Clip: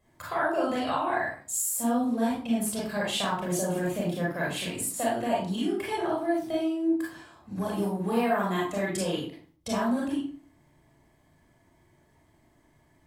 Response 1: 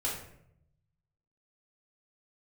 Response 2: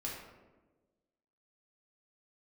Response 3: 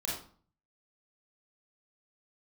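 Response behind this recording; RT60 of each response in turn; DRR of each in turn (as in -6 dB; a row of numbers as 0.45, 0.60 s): 3; 0.75, 1.3, 0.45 s; -6.0, -4.5, -5.5 dB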